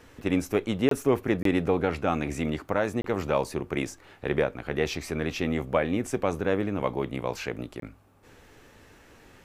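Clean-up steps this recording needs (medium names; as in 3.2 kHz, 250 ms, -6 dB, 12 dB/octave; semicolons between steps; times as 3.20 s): interpolate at 0.89/1.43/3.02/7.80 s, 23 ms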